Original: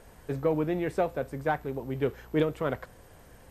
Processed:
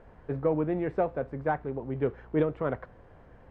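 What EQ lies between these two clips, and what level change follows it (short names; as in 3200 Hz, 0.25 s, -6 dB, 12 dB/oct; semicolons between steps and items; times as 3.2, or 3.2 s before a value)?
LPF 1700 Hz 12 dB/oct; 0.0 dB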